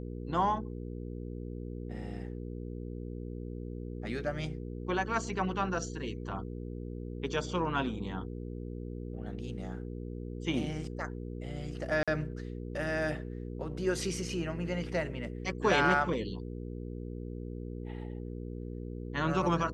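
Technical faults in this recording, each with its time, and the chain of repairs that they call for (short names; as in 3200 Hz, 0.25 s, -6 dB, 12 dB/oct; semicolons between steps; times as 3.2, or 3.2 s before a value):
hum 60 Hz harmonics 8 -40 dBFS
12.03–12.08 gap 46 ms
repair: de-hum 60 Hz, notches 8; interpolate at 12.03, 46 ms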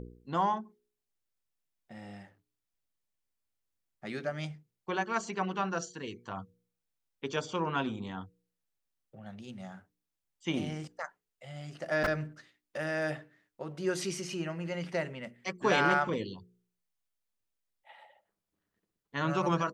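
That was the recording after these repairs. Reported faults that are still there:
none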